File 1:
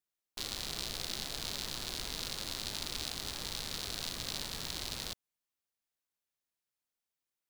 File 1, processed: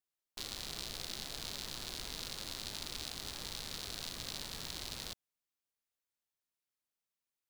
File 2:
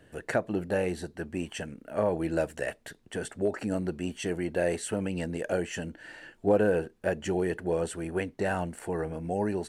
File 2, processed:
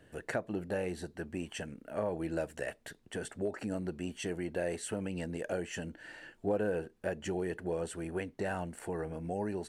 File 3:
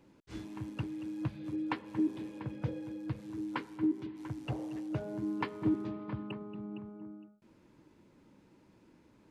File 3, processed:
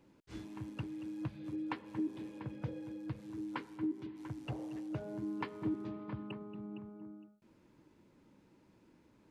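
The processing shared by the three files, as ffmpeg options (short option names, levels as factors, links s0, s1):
-af "acompressor=threshold=0.02:ratio=1.5,volume=0.708"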